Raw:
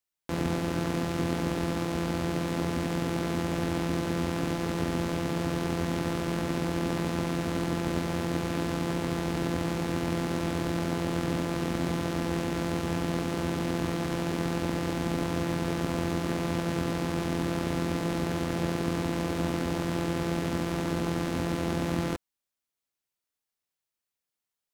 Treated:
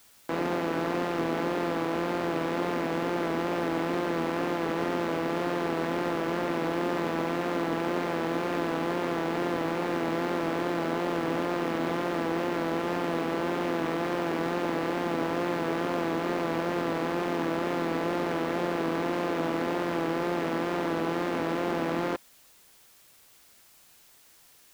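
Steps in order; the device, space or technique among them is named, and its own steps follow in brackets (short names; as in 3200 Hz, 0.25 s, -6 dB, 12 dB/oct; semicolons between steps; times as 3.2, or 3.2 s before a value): tape answering machine (BPF 360–3000 Hz; soft clip -26 dBFS, distortion -16 dB; wow and flutter; white noise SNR 28 dB); gain +7 dB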